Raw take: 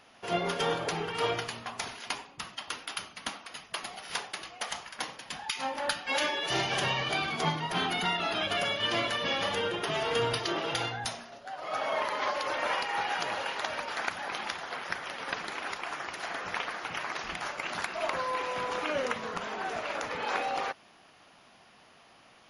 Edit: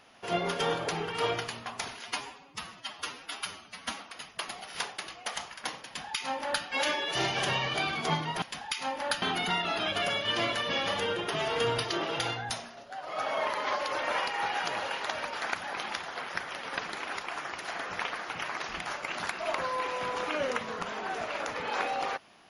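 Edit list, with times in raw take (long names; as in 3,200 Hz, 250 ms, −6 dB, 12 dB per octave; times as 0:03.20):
0:02.04–0:03.34: time-stretch 1.5×
0:05.20–0:06.00: duplicate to 0:07.77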